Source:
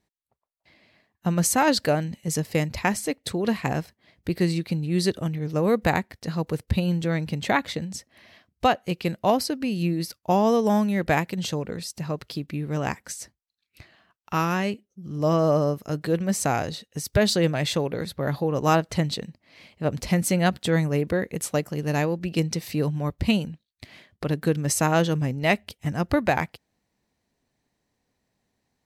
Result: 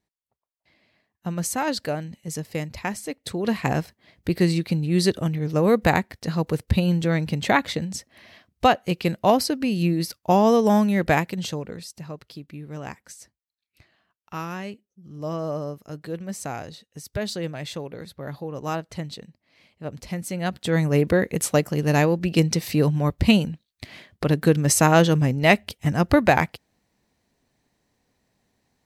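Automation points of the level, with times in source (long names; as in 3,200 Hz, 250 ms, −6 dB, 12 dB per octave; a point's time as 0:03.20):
0:03.05 −5 dB
0:03.70 +3 dB
0:11.05 +3 dB
0:12.23 −8 dB
0:20.30 −8 dB
0:20.99 +5 dB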